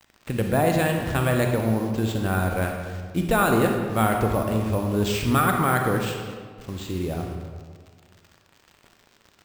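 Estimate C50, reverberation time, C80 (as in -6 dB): 4.0 dB, 1.8 s, 5.5 dB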